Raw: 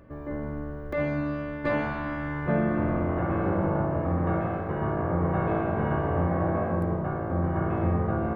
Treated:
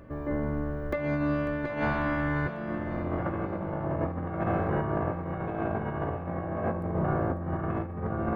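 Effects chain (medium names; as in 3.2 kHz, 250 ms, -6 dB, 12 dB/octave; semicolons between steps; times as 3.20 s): compressor with a negative ratio -29 dBFS, ratio -0.5; thinning echo 546 ms, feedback 46%, high-pass 1.1 kHz, level -9.5 dB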